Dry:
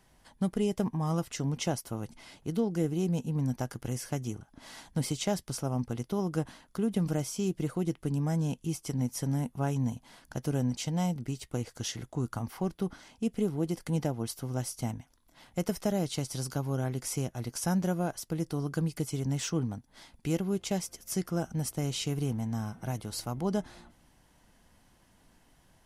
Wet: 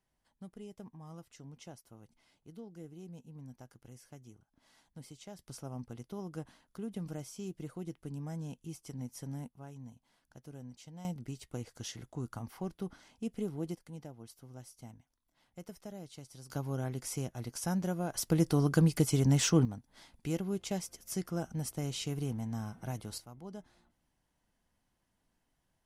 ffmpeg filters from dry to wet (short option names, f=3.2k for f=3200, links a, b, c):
-af "asetnsamples=n=441:p=0,asendcmd='5.39 volume volume -11dB;9.48 volume volume -18.5dB;11.05 volume volume -7dB;13.75 volume volume -16.5dB;16.5 volume volume -4.5dB;18.14 volume volume 5dB;19.65 volume volume -4.5dB;23.18 volume volume -16dB',volume=-19dB"